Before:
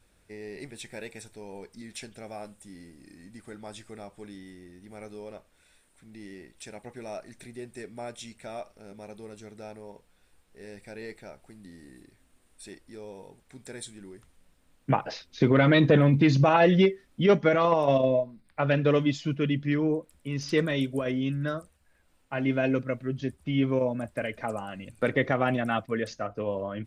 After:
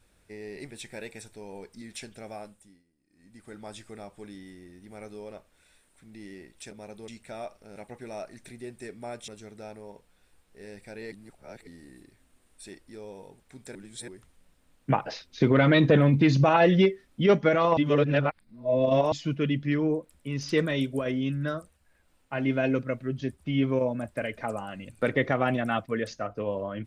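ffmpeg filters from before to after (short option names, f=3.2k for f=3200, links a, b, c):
-filter_complex "[0:a]asplit=13[a][b][c][d][e][f][g][h][i][j][k][l][m];[a]atrim=end=2.83,asetpts=PTS-STARTPTS,afade=t=out:st=2.33:d=0.5:silence=0.0668344[n];[b]atrim=start=2.83:end=3.09,asetpts=PTS-STARTPTS,volume=-23.5dB[o];[c]atrim=start=3.09:end=6.712,asetpts=PTS-STARTPTS,afade=t=in:d=0.5:silence=0.0668344[p];[d]atrim=start=8.908:end=9.282[q];[e]atrim=start=8.228:end=8.912[r];[f]atrim=start=6.708:end=8.232[s];[g]atrim=start=9.278:end=11.122[t];[h]atrim=start=11.118:end=11.672,asetpts=PTS-STARTPTS,areverse[u];[i]atrim=start=11.668:end=13.752[v];[j]atrim=start=13.748:end=14.082,asetpts=PTS-STARTPTS,areverse[w];[k]atrim=start=14.078:end=17.772[x];[l]atrim=start=17.768:end=19.122,asetpts=PTS-STARTPTS,areverse[y];[m]atrim=start=19.118[z];[n][o][p]concat=n=3:v=0:a=1[aa];[aa][q]acrossfade=d=0.004:c1=hsin:c2=hsin[ab];[ab][r]acrossfade=d=0.004:c1=hsin:c2=hsin[ac];[ac][s]acrossfade=d=0.004:c1=hsin:c2=hsin[ad];[ad][t]acrossfade=d=0.004:c1=hsin:c2=hsin[ae];[ae][u]acrossfade=d=0.004:c1=hsin:c2=hsin[af];[af][v]acrossfade=d=0.004:c1=hsin:c2=hsin[ag];[ag][w]acrossfade=d=0.004:c1=hsin:c2=hsin[ah];[ah][x]acrossfade=d=0.004:c1=hsin:c2=hsin[ai];[ai][y]acrossfade=d=0.004:c1=hsin:c2=hsin[aj];[aj][z]acrossfade=d=0.004:c1=hsin:c2=hsin"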